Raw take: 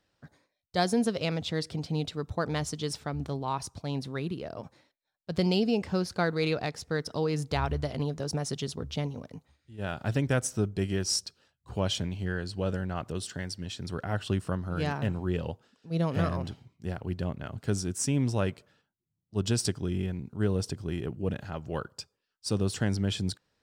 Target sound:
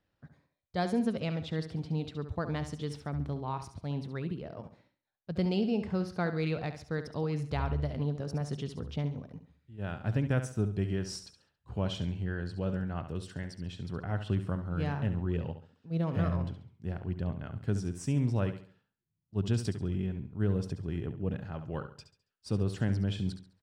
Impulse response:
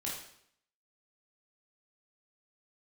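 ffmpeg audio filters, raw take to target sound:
-filter_complex "[0:a]bass=f=250:g=5,treble=f=4000:g=-10,asplit=2[s0][s1];[s1]aecho=0:1:69|138|207|276:0.299|0.104|0.0366|0.0128[s2];[s0][s2]amix=inputs=2:normalize=0,volume=0.531"

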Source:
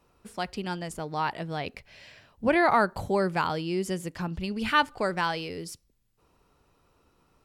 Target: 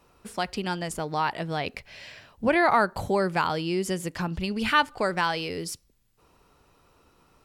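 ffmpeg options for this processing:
-filter_complex "[0:a]lowshelf=f=500:g=-3,asplit=2[s0][s1];[s1]acompressor=threshold=0.0224:ratio=6,volume=1.06[s2];[s0][s2]amix=inputs=2:normalize=0"

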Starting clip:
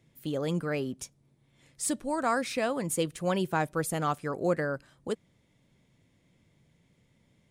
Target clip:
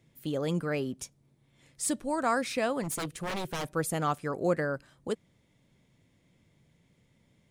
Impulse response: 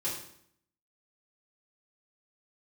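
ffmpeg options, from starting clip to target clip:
-filter_complex "[0:a]asplit=3[s0][s1][s2];[s0]afade=t=out:st=2.82:d=0.02[s3];[s1]aeval=exprs='0.0376*(abs(mod(val(0)/0.0376+3,4)-2)-1)':c=same,afade=t=in:st=2.82:d=0.02,afade=t=out:st=3.67:d=0.02[s4];[s2]afade=t=in:st=3.67:d=0.02[s5];[s3][s4][s5]amix=inputs=3:normalize=0"

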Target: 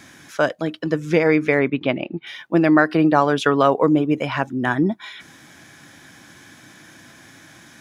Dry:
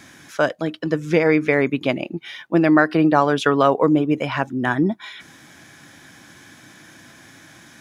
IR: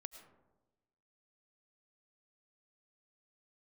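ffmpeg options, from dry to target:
-filter_complex "[0:a]asettb=1/sr,asplit=3[s0][s1][s2];[s0]atrim=end=1.594[s3];[s1]atrim=start=1.59:end=2.27,asetpts=PTS-STARTPTS,afade=t=in:d=0.004:c=qsin,afade=t=out:st=0.676:d=0.004:c=qsin,lowpass=f=3800:w=0.5412,lowpass=f=3800:w=1.3066[s4];[s2]atrim=start=2.266[s5];[s3][s4]acrossfade=d=0.004:c1=hsin:c2=qsin[s6];[s6][s5]acrossfade=d=0.004:c1=qsin:c2=hsin"

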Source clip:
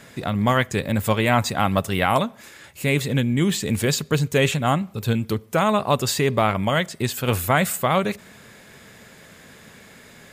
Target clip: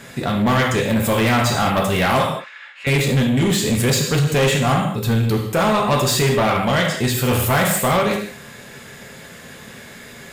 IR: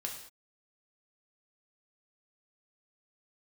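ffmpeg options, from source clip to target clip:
-filter_complex "[0:a]asettb=1/sr,asplit=3[s0][s1][s2];[s0]atrim=end=2.224[s3];[s1]atrim=start=2.22:end=2.87,asetpts=PTS-STARTPTS,afade=t=in:d=0.004:c=qsin,afade=t=out:st=0.646:d=0.004:c=qsin,asuperpass=centerf=1800:order=4:qfactor=0.88[s4];[s2]atrim=start=2.866[s5];[s3][s4]acrossfade=d=0.004:c1=hsin:c2=qsin[s6];[s6][s5]acrossfade=d=0.004:c1=qsin:c2=hsin[s7];[1:a]atrim=start_sample=2205,afade=t=out:st=0.27:d=0.01,atrim=end_sample=12348[s8];[s7][s8]afir=irnorm=-1:irlink=0,asoftclip=type=tanh:threshold=0.1,volume=2.37"

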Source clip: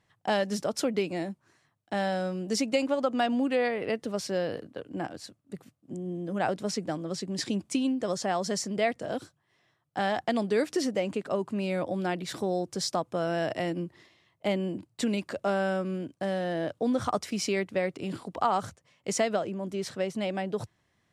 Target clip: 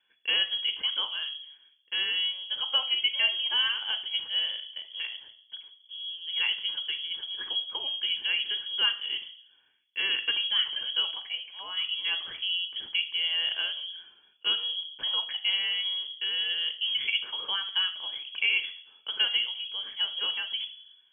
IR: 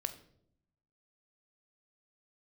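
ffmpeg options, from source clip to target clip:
-filter_complex "[0:a]asettb=1/sr,asplit=3[s0][s1][s2];[s0]atrim=end=11.124[s3];[s1]atrim=start=11.12:end=11.77,asetpts=PTS-STARTPTS,afade=t=in:d=0.004:c=qsin,afade=t=out:st=0.646:d=0.004:c=qsin,highpass=f=970:p=1[s4];[s2]atrim=start=11.766[s5];[s3][s4]acrossfade=d=0.004:c1=hsin:c2=qsin[s6];[s6][s5]acrossfade=d=0.004:c1=qsin:c2=hsin[s7];[1:a]atrim=start_sample=2205,asetrate=48510,aresample=44100[s8];[s7][s8]afir=irnorm=-1:irlink=0,lowpass=f=3000:t=q:w=0.5098,lowpass=f=3000:t=q:w=0.6013,lowpass=f=3000:t=q:w=0.9,lowpass=f=3000:t=q:w=2.563,afreqshift=-3500"

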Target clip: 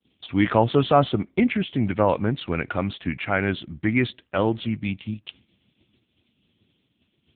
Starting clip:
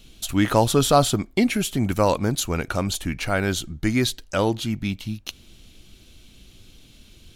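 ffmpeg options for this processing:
-af "agate=range=0.0224:threshold=0.0112:ratio=3:detection=peak,adynamicequalizer=threshold=0.00708:dfrequency=2000:dqfactor=2.3:tfrequency=2000:tqfactor=2.3:attack=5:release=100:ratio=0.375:range=2.5:mode=boostabove:tftype=bell" -ar 8000 -c:a libopencore_amrnb -b:a 6700

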